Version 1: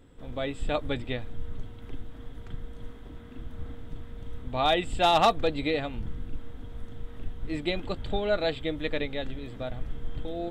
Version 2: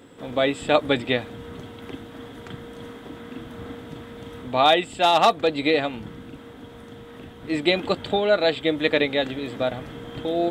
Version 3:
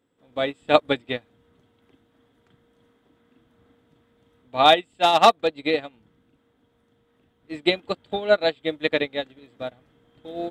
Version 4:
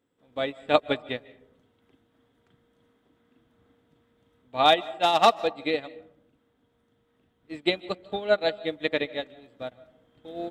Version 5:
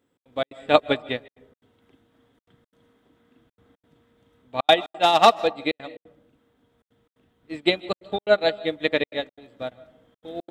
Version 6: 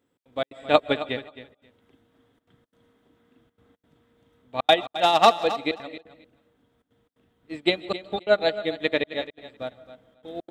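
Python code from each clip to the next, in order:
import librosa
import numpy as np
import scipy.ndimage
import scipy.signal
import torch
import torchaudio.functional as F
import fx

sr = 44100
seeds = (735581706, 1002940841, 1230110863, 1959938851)

y1 = scipy.signal.sosfilt(scipy.signal.bessel(2, 230.0, 'highpass', norm='mag', fs=sr, output='sos'), x)
y1 = fx.rider(y1, sr, range_db=4, speed_s=0.5)
y1 = F.gain(torch.from_numpy(y1), 8.0).numpy()
y2 = fx.upward_expand(y1, sr, threshold_db=-32.0, expansion=2.5)
y2 = F.gain(torch.from_numpy(y2), 4.0).numpy()
y3 = fx.rev_freeverb(y2, sr, rt60_s=0.74, hf_ratio=0.35, predelay_ms=110, drr_db=19.0)
y3 = F.gain(torch.from_numpy(y3), -4.0).numpy()
y4 = fx.step_gate(y3, sr, bpm=176, pattern='xx.xx.xxxxxxx', floor_db=-60.0, edge_ms=4.5)
y4 = F.gain(torch.from_numpy(y4), 4.0).numpy()
y5 = fx.echo_feedback(y4, sr, ms=266, feedback_pct=16, wet_db=-14.0)
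y5 = F.gain(torch.from_numpy(y5), -1.5).numpy()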